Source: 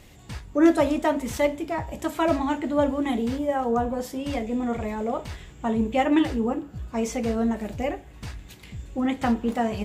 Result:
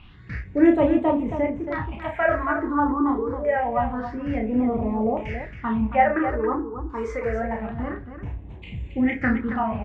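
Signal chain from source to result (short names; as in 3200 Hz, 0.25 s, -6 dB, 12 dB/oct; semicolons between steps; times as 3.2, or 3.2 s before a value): LFO low-pass saw down 0.58 Hz 910–2400 Hz; phaser stages 6, 0.26 Hz, lowest notch 160–1500 Hz; on a send: loudspeakers at several distances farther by 11 m -4 dB, 94 m -9 dB; on the sum: gain +2 dB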